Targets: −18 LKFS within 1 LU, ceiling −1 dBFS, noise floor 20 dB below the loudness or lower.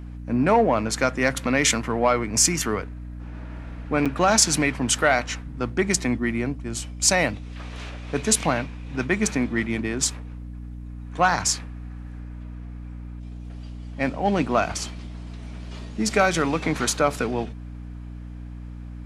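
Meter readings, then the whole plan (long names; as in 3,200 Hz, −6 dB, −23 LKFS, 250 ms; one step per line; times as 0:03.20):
number of dropouts 1; longest dropout 6.7 ms; mains hum 60 Hz; hum harmonics up to 300 Hz; level of the hum −33 dBFS; integrated loudness −22.5 LKFS; sample peak −4.5 dBFS; target loudness −18.0 LKFS
→ repair the gap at 0:04.05, 6.7 ms
mains-hum notches 60/120/180/240/300 Hz
level +4.5 dB
brickwall limiter −1 dBFS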